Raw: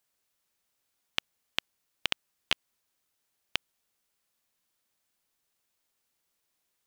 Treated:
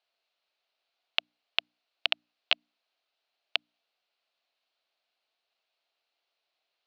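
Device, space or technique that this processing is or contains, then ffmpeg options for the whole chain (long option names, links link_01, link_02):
phone earpiece: -af "highpass=490,equalizer=frequency=680:width_type=q:width=4:gain=8,equalizer=frequency=990:width_type=q:width=4:gain=-3,equalizer=frequency=1800:width_type=q:width=4:gain=-4,equalizer=frequency=2700:width_type=q:width=4:gain=4,equalizer=frequency=4200:width_type=q:width=4:gain=6,lowpass=frequency=4300:width=0.5412,lowpass=frequency=4300:width=1.3066,bandreject=frequency=60:width_type=h:width=6,bandreject=frequency=120:width_type=h:width=6,bandreject=frequency=180:width_type=h:width=6,bandreject=frequency=240:width_type=h:width=6,bandreject=frequency=300:width_type=h:width=6,volume=1dB"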